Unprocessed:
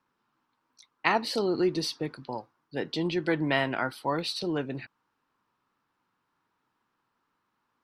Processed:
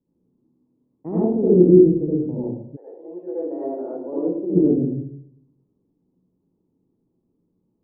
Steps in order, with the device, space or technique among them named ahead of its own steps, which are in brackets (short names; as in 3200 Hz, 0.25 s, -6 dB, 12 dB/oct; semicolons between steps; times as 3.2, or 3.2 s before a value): next room (LPF 420 Hz 24 dB/oct; reverb RT60 0.70 s, pre-delay 65 ms, DRR -7 dB); 2.75–4.54 HPF 790 Hz -> 250 Hz 24 dB/oct; gain +6.5 dB